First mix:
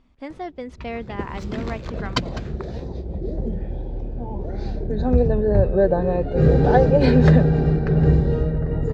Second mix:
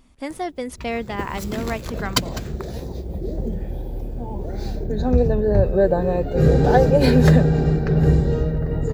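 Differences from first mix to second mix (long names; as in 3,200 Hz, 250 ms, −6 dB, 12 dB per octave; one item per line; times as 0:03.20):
speech +4.0 dB
master: remove high-frequency loss of the air 160 metres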